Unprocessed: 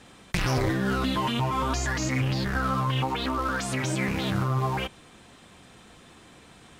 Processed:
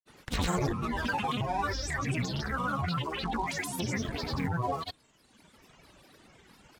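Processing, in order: reverb removal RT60 1.4 s; granulator 100 ms, pitch spread up and down by 7 st; trim -1.5 dB

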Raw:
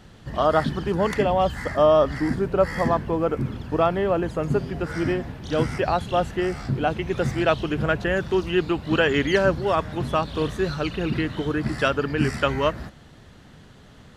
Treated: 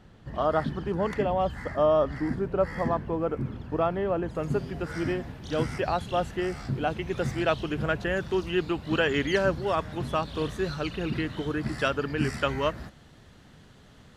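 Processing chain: treble shelf 3 kHz -8.5 dB, from 4.35 s +2 dB; trim -5 dB

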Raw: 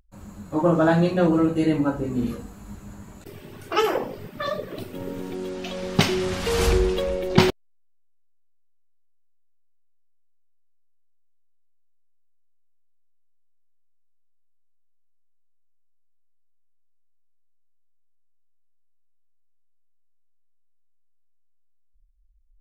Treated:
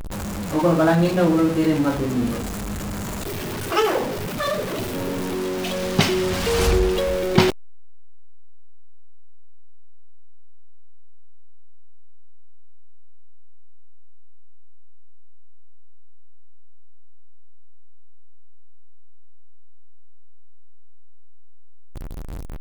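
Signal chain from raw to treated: jump at every zero crossing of -24.5 dBFS

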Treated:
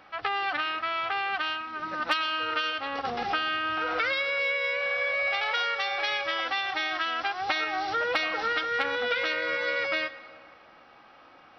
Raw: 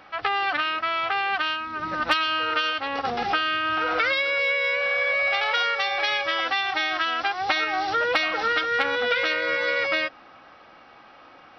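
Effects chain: 1.62–2.41 s: peaking EQ 69 Hz -11 dB 2 oct; reverberation RT60 2.0 s, pre-delay 94 ms, DRR 16.5 dB; trim -4.5 dB

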